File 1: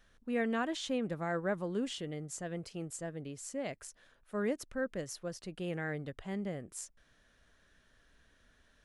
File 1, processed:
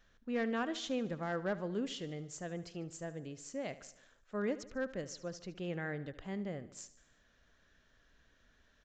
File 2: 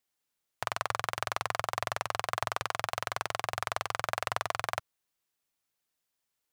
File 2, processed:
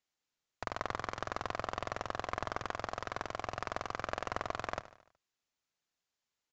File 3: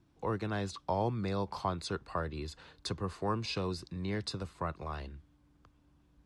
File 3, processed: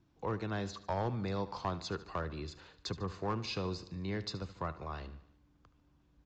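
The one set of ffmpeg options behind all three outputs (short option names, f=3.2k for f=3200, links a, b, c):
-filter_complex "[0:a]aeval=exprs='clip(val(0),-1,0.0398)':c=same,asplit=2[a][b];[b]aecho=0:1:74|148|222|296|370:0.158|0.0872|0.0479|0.0264|0.0145[c];[a][c]amix=inputs=2:normalize=0,aresample=16000,aresample=44100,volume=-2dB"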